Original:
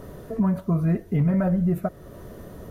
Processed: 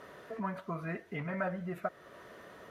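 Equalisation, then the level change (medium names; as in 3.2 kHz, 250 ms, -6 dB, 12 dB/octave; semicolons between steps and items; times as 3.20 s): band-pass filter 2 kHz, Q 1; +2.5 dB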